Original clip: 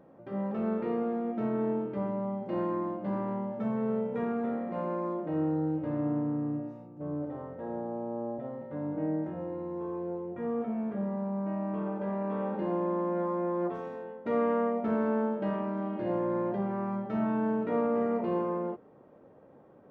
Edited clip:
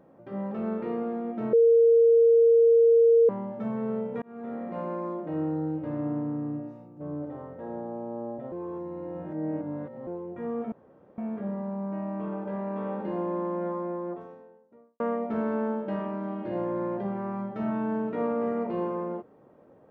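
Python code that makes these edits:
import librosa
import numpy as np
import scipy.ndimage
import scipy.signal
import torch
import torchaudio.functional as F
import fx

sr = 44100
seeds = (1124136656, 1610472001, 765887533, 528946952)

y = fx.studio_fade_out(x, sr, start_s=13.03, length_s=1.51)
y = fx.edit(y, sr, fx.bleep(start_s=1.53, length_s=1.76, hz=462.0, db=-15.0),
    fx.fade_in_span(start_s=4.22, length_s=0.43),
    fx.reverse_span(start_s=8.52, length_s=1.55),
    fx.insert_room_tone(at_s=10.72, length_s=0.46), tone=tone)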